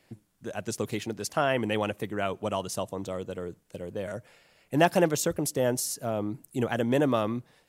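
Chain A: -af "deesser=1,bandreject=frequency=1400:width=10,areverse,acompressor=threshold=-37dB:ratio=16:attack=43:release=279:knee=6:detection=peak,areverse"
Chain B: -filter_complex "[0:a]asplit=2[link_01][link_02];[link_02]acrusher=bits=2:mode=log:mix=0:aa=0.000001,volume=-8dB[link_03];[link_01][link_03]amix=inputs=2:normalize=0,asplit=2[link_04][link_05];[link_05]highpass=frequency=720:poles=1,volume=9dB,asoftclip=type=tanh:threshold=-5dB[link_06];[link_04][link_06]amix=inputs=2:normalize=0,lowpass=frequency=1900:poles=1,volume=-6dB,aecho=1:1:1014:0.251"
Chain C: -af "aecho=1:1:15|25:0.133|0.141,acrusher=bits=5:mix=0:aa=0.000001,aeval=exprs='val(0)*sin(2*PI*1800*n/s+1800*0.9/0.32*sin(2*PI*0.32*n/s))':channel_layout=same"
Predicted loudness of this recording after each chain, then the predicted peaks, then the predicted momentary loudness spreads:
−40.5, −26.5, −30.5 LKFS; −22.5, −6.5, −9.0 dBFS; 5, 12, 12 LU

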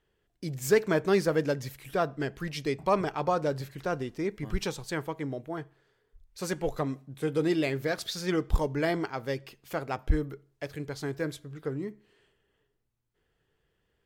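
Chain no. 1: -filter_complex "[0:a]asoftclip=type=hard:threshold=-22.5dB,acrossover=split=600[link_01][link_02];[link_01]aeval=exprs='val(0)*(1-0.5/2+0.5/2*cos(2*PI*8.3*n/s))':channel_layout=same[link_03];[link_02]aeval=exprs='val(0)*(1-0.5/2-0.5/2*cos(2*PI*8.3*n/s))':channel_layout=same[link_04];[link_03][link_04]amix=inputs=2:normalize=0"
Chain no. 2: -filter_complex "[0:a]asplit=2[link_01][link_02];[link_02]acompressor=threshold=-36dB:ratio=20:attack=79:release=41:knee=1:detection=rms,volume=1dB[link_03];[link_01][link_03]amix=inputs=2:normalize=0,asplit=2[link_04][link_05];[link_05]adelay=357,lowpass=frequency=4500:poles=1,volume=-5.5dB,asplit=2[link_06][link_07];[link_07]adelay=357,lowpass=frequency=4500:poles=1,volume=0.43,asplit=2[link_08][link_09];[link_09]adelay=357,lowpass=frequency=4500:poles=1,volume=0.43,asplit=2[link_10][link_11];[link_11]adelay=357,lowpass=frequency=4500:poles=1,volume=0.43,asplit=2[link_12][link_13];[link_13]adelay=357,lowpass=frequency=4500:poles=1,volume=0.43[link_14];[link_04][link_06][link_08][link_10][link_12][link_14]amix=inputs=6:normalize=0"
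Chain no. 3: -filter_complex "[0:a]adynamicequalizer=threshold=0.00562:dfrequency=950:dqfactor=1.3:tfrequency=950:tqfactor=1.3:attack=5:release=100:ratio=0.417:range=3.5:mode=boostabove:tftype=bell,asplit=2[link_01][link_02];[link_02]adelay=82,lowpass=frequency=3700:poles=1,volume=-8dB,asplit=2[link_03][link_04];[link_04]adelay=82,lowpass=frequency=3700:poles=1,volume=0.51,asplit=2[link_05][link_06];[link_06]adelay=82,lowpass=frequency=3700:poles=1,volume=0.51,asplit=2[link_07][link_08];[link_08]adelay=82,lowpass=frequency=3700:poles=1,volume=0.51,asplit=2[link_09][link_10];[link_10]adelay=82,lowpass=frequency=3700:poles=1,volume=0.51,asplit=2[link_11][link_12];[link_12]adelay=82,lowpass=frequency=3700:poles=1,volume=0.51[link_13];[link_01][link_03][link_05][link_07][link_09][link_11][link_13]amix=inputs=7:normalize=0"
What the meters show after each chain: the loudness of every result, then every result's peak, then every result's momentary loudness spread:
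−35.0, −26.5, −28.5 LKFS; −17.5, −9.0, −9.5 dBFS; 10, 11, 13 LU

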